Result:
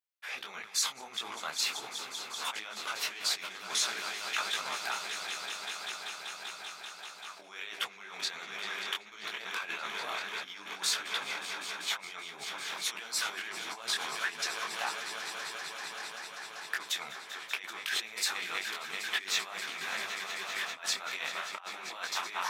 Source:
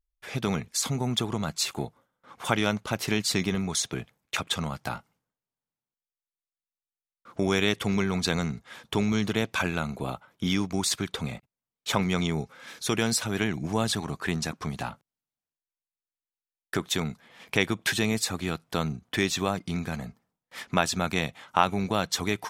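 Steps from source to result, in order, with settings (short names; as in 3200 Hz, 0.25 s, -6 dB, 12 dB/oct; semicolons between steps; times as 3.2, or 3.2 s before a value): bell 9100 Hz -7.5 dB 1.6 oct; swelling echo 0.194 s, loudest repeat 5, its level -15 dB; negative-ratio compressor -30 dBFS, ratio -0.5; HPF 1100 Hz 12 dB/oct; detuned doubles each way 53 cents; gain +4.5 dB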